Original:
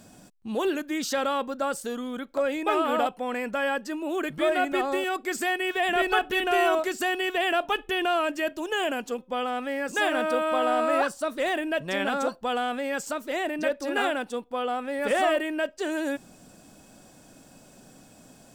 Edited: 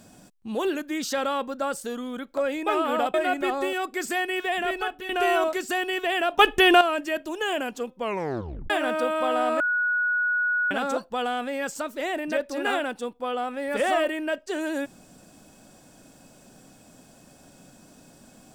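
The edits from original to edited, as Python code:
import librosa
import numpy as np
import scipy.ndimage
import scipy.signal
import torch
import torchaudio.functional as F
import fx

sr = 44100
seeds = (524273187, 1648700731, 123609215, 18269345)

y = fx.edit(x, sr, fx.cut(start_s=3.14, length_s=1.31),
    fx.fade_out_to(start_s=5.69, length_s=0.71, floor_db=-11.5),
    fx.clip_gain(start_s=7.7, length_s=0.42, db=10.0),
    fx.tape_stop(start_s=9.3, length_s=0.71),
    fx.bleep(start_s=10.91, length_s=1.11, hz=1460.0, db=-21.0), tone=tone)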